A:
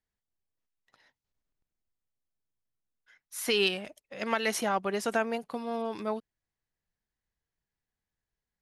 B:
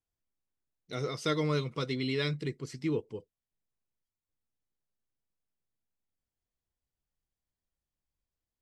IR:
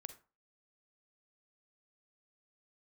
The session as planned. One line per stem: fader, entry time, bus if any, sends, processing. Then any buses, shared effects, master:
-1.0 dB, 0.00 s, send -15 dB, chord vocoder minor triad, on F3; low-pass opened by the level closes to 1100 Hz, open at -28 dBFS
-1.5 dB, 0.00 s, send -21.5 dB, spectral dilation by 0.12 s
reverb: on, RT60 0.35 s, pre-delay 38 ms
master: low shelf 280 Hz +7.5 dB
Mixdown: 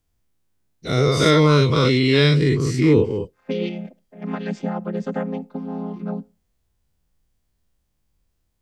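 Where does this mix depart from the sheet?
stem A: send -15 dB -> -7.5 dB; stem B -1.5 dB -> +8.5 dB

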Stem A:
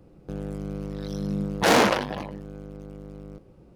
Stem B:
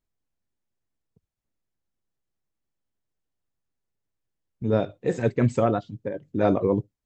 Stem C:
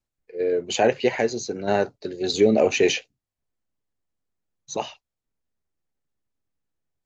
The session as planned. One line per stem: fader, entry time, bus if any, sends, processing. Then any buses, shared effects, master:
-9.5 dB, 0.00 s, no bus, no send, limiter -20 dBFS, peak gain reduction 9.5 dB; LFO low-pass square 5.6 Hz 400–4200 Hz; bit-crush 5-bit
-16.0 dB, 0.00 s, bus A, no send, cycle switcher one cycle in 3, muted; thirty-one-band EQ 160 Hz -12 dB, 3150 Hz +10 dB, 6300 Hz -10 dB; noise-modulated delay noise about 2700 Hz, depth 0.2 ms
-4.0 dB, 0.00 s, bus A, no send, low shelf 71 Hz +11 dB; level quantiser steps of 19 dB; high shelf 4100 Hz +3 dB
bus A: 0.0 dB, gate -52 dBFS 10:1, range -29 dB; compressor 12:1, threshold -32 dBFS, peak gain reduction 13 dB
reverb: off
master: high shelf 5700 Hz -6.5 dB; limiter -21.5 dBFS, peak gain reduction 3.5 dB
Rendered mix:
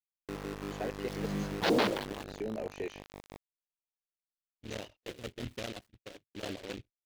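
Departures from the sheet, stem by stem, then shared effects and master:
stem A: missing limiter -20 dBFS, peak gain reduction 9.5 dB; stem C -4.0 dB -> -15.0 dB; master: missing limiter -21.5 dBFS, peak gain reduction 3.5 dB

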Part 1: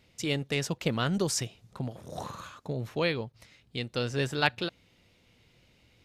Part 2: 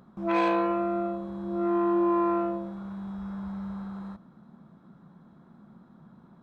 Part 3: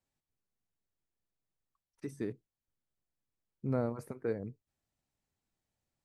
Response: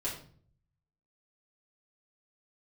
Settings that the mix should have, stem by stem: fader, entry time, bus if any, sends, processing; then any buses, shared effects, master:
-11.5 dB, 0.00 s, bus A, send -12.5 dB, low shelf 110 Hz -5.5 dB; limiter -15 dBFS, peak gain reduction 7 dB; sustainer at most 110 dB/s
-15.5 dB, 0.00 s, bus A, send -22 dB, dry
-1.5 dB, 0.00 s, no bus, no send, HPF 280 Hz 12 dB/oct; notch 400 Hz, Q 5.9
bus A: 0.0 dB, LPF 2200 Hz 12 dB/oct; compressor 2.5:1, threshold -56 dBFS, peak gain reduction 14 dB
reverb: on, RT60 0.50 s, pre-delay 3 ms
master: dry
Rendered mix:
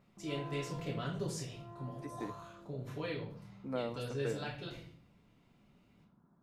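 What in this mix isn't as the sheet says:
stem 1: missing low shelf 110 Hz -5.5 dB; reverb return +8.5 dB

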